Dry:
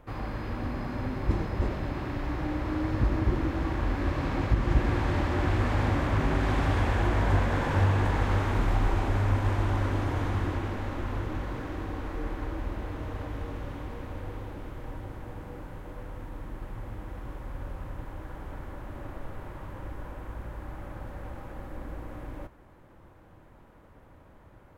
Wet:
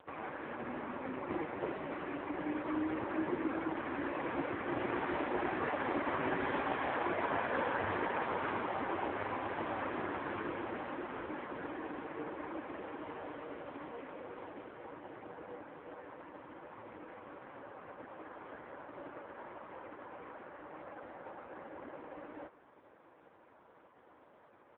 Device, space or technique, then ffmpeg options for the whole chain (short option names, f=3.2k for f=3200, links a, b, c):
satellite phone: -af "highpass=340,lowpass=3k,aecho=1:1:497:0.0841,volume=1dB" -ar 8000 -c:a libopencore_amrnb -b:a 4750